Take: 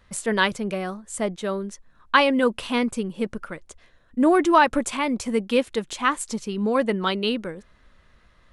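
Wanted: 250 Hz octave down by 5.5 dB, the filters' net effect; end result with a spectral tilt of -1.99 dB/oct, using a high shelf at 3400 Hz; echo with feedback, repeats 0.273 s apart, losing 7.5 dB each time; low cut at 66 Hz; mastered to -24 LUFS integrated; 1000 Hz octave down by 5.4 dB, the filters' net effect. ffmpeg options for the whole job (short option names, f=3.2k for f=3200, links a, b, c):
-af "highpass=66,equalizer=f=250:t=o:g=-6.5,equalizer=f=1k:t=o:g=-7,highshelf=f=3.4k:g=8.5,aecho=1:1:273|546|819|1092|1365:0.422|0.177|0.0744|0.0312|0.0131,volume=0.5dB"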